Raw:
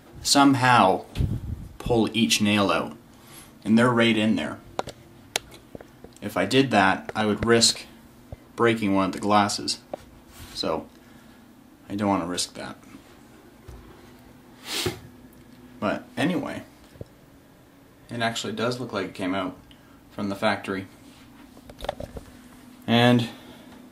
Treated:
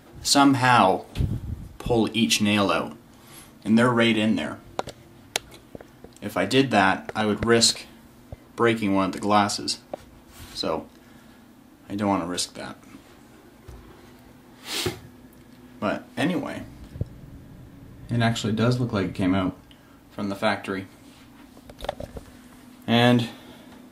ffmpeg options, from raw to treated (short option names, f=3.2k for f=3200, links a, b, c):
-filter_complex "[0:a]asettb=1/sr,asplit=3[a][b][c];[a]atrim=end=16.604[d];[b]atrim=start=16.6:end=19.5,asetpts=PTS-STARTPTS,afade=t=in:d=0.004:c=qsin,afade=t=out:st=2.896:d=0.004:c=qsin,bass=f=250:g=13,treble=f=4k:g=-1[e];[c]atrim=start=19.496[f];[d][e]acrossfade=d=0.004:c1=hsin:c2=qsin[g];[g][f]acrossfade=d=0.004:c1=qsin:c2=hsin"